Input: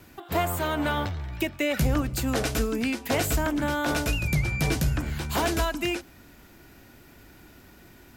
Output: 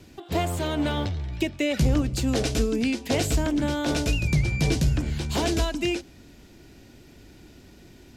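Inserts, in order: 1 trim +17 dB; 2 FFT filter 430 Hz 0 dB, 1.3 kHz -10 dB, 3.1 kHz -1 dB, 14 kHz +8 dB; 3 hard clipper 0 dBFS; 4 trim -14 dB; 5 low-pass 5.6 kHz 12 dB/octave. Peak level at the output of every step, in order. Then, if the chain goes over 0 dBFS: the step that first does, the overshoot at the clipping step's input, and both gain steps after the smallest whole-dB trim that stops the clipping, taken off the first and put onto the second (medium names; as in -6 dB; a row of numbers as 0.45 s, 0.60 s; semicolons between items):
+2.5 dBFS, +6.5 dBFS, 0.0 dBFS, -14.0 dBFS, -14.0 dBFS; step 1, 6.5 dB; step 1 +10 dB, step 4 -7 dB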